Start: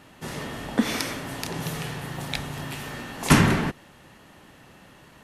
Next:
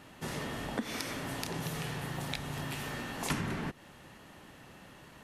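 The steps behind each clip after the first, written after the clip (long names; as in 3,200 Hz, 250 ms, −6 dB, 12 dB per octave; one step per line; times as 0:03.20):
downward compressor 4 to 1, threshold −31 dBFS, peak gain reduction 17 dB
level −2.5 dB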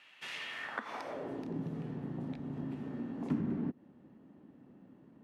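in parallel at −4 dB: dead-zone distortion −47.5 dBFS
on the sum: band-pass filter sweep 2,600 Hz → 250 Hz, 0:00.49–0:01.52
level +3 dB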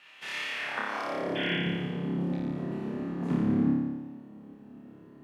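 sound drawn into the spectrogram noise, 0:01.35–0:01.55, 1,400–3,500 Hz −39 dBFS
on a send: flutter between parallel walls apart 4.9 metres, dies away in 1.3 s
on the sum: level +2.5 dB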